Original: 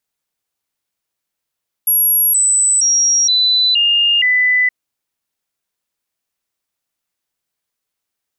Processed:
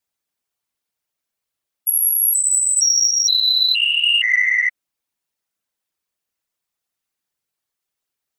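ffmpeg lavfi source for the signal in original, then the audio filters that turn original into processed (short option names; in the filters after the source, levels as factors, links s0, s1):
-f lavfi -i "aevalsrc='0.316*clip(min(mod(t,0.47),0.47-mod(t,0.47))/0.005,0,1)*sin(2*PI*11300*pow(2,-floor(t/0.47)/2)*mod(t,0.47))':d=2.82:s=44100"
-filter_complex "[0:a]afftfilt=real='hypot(re,im)*cos(2*PI*random(0))':imag='hypot(re,im)*sin(2*PI*random(1))':win_size=512:overlap=0.75,asplit=2[s0][s1];[s1]asoftclip=type=tanh:threshold=0.141,volume=0.447[s2];[s0][s2]amix=inputs=2:normalize=0"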